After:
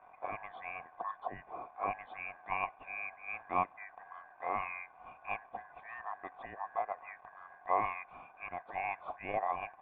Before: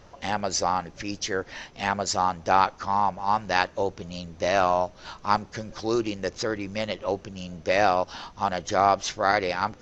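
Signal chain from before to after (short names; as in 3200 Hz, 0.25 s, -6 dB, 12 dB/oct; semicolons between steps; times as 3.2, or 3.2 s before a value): four-band scrambler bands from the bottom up 2143; crackle 370/s -35 dBFS; vocal tract filter a; gain +11 dB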